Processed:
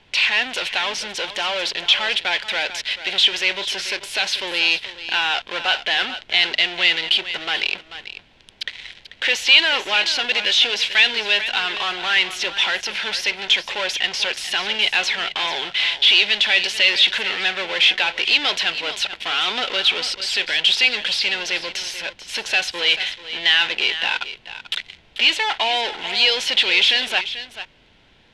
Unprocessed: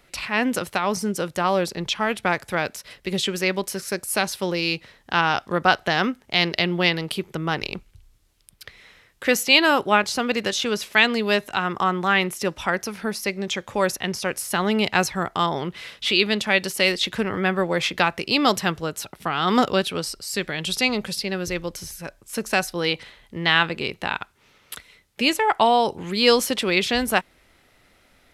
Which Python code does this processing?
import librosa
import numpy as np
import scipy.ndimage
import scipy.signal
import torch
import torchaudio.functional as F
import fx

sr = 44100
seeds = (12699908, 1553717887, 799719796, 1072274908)

p1 = fx.fuzz(x, sr, gain_db=39.0, gate_db=-48.0)
p2 = x + F.gain(torch.from_numpy(p1), -3.5).numpy()
p3 = scipy.signal.sosfilt(scipy.signal.butter(2, 500.0, 'highpass', fs=sr, output='sos'), p2)
p4 = fx.high_shelf(p3, sr, hz=2000.0, db=12.0)
p5 = p4 + fx.echo_single(p4, sr, ms=439, db=-12.5, dry=0)
p6 = fx.leveller(p5, sr, passes=1)
p7 = fx.dmg_noise_colour(p6, sr, seeds[0], colour='pink', level_db=-39.0)
p8 = fx.lowpass_res(p7, sr, hz=3200.0, q=2.3)
p9 = fx.notch(p8, sr, hz=1200.0, q=5.0)
y = F.gain(torch.from_numpy(p9), -15.5).numpy()